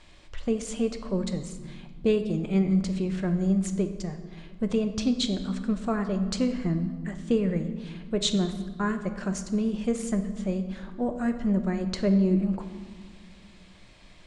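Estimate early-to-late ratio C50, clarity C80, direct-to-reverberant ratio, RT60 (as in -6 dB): 9.5 dB, 11.0 dB, 6.5 dB, 1.6 s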